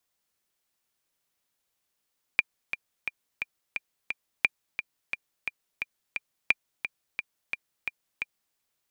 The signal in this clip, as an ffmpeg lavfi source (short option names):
-f lavfi -i "aevalsrc='pow(10,(-6.5-10*gte(mod(t,6*60/175),60/175))/20)*sin(2*PI*2390*mod(t,60/175))*exp(-6.91*mod(t,60/175)/0.03)':d=6.17:s=44100"